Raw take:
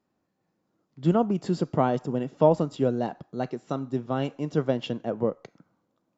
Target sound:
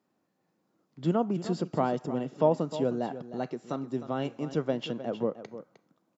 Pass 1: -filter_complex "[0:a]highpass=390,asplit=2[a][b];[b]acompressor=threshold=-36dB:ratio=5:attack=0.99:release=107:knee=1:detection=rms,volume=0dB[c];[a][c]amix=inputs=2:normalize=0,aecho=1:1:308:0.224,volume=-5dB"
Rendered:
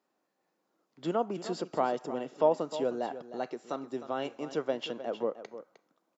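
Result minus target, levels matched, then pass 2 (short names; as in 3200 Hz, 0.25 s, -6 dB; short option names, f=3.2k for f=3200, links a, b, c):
125 Hz band -10.5 dB
-filter_complex "[0:a]highpass=140,asplit=2[a][b];[b]acompressor=threshold=-36dB:ratio=5:attack=0.99:release=107:knee=1:detection=rms,volume=0dB[c];[a][c]amix=inputs=2:normalize=0,aecho=1:1:308:0.224,volume=-5dB"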